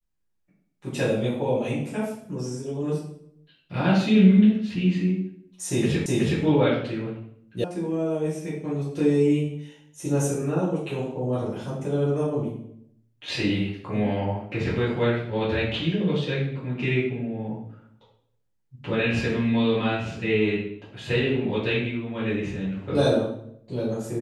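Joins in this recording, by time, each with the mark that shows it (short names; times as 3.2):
6.06 repeat of the last 0.37 s
7.64 sound cut off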